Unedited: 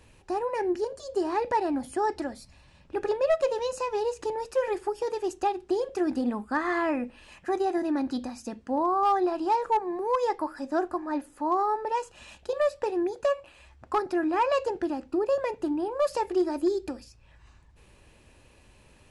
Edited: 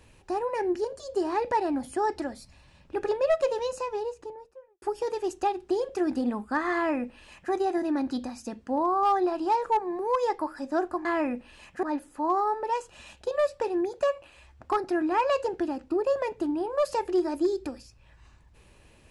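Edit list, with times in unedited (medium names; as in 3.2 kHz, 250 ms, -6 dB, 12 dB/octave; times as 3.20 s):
3.52–4.82 s: studio fade out
6.74–7.52 s: copy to 11.05 s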